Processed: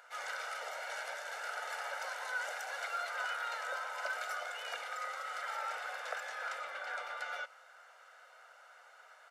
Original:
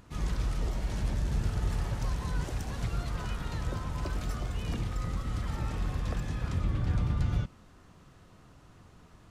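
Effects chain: elliptic high-pass 500 Hz, stop band 80 dB; bell 1600 Hz +10.5 dB 0.96 oct; comb 1.4 ms, depth 64%; gain -2 dB

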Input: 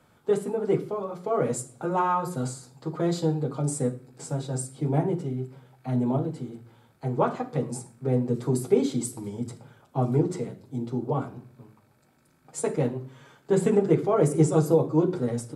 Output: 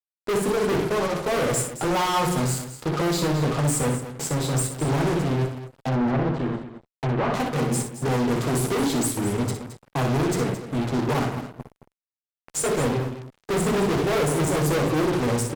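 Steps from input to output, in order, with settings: fuzz box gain 39 dB, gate -43 dBFS; wow and flutter 15 cents; 5.88–7.34 treble ducked by the level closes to 2100 Hz, closed at -13 dBFS; on a send: loudspeakers at several distances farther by 21 m -8 dB, 75 m -12 dB; on the sum: gain -8.5 dB

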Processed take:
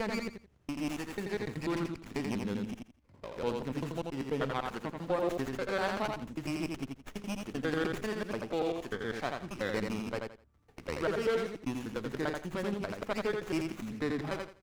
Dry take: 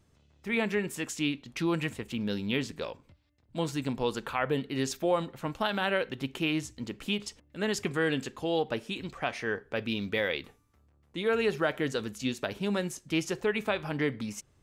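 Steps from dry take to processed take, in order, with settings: slices in reverse order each 98 ms, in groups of 7; feedback echo 84 ms, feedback 22%, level -4 dB; running maximum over 9 samples; gain -4.5 dB

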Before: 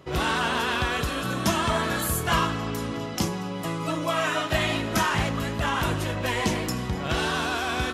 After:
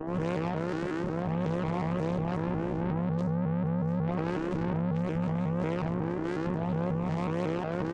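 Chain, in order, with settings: whine 660 Hz -29 dBFS; vocoder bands 4, saw 170 Hz; 2.47–5.19 bell 180 Hz +9.5 dB 0.56 oct; echo 0.14 s -22.5 dB; chorus 0.56 Hz, depth 3.8 ms; limiter -22.5 dBFS, peak gain reduction 12.5 dB; tilt shelf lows +7.5 dB, about 880 Hz; tube stage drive 30 dB, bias 0.8; AM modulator 69 Hz, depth 50%; shaped vibrato saw up 5.5 Hz, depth 160 cents; gain +5 dB

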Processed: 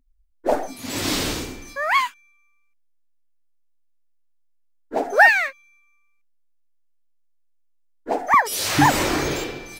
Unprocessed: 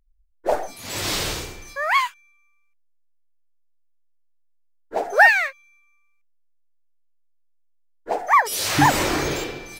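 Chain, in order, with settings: bell 260 Hz +14.5 dB 0.52 oct, from 8.34 s +2.5 dB

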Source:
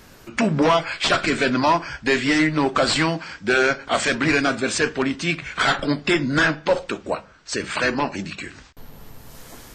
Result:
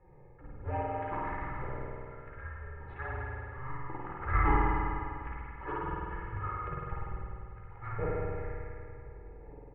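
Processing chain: Wiener smoothing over 25 samples; HPF 200 Hz; comb 2.4 ms, depth 98%; transient shaper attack +3 dB, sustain -5 dB; 1.34–3.83 compressor, threshold -21 dBFS, peak gain reduction 11.5 dB; auto swell 0.571 s; flange 0.32 Hz, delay 6.6 ms, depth 9.3 ms, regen +32%; echo 0.16 s -9 dB; spring tank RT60 2.4 s, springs 48 ms, chirp 20 ms, DRR -6 dB; mistuned SSB -390 Hz 310–2300 Hz; gain -3.5 dB

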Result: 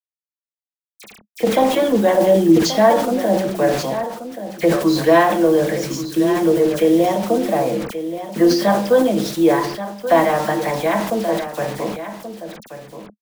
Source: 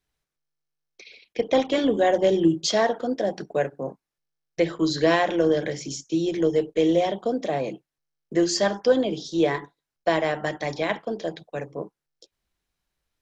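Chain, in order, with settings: 6.63–8.76 steep low-pass 6000 Hz 72 dB/oct; reverb RT60 0.45 s, pre-delay 6 ms, DRR 5 dB; in parallel at +1 dB: compressor 6:1, threshold -31 dBFS, peak gain reduction 20.5 dB; on the sum: bell 930 Hz +12 dB 1.7 oct; bit-crush 5-bit; bell 210 Hz +12 dB 0.57 oct; dispersion lows, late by 44 ms, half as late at 2500 Hz; on a send: echo 1.13 s -11.5 dB; on the sum: sustainer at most 70 dB/s; gain -5 dB

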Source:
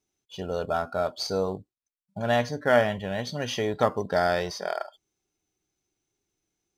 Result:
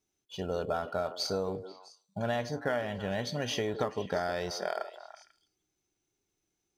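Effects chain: compressor 12:1, threshold -26 dBFS, peak gain reduction 12 dB; delay with a stepping band-pass 0.164 s, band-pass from 380 Hz, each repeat 1.4 oct, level -8 dB; gain -1.5 dB

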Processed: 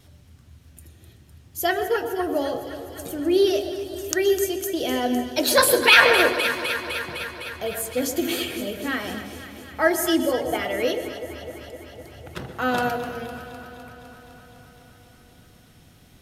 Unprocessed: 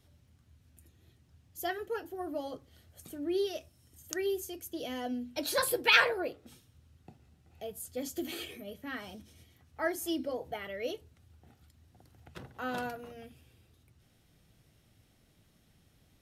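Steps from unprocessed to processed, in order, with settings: de-hum 48.35 Hz, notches 20; vibrato 1.7 Hz 12 cents; echo with dull and thin repeats by turns 0.127 s, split 850 Hz, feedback 85%, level -10.5 dB; reverb RT60 0.65 s, pre-delay 0.113 s, DRR 12 dB; maximiser +14 dB; gain -1 dB

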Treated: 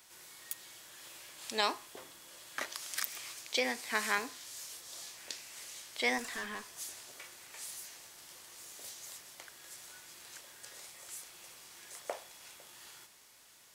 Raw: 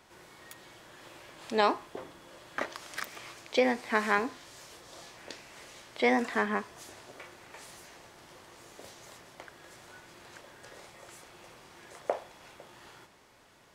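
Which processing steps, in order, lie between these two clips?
pre-emphasis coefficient 0.9; 6.18–6.66 tube stage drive 43 dB, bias 0.25; gain +8.5 dB

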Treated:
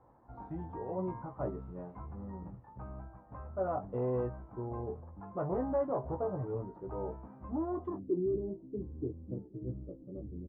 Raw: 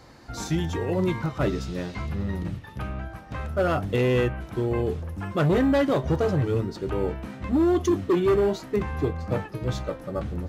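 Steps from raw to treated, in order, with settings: dynamic EQ 650 Hz, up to +4 dB, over -38 dBFS, Q 2.9; ladder low-pass 1100 Hz, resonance 50%, from 7.97 s 390 Hz; doubler 16 ms -6 dB; gain -6.5 dB

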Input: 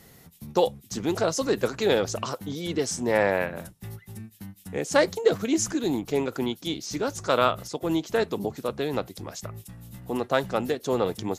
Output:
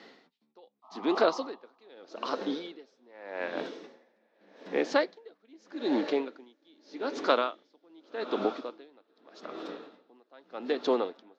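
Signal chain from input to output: elliptic band-pass 260–4400 Hz, stop band 40 dB; in parallel at -1.5 dB: compressor, threshold -33 dBFS, peak gain reduction 17 dB; on the sum: diffused feedback echo 0.969 s, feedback 53%, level -14 dB; painted sound noise, 0.82–1.89, 620–1300 Hz -35 dBFS; dB-linear tremolo 0.83 Hz, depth 35 dB

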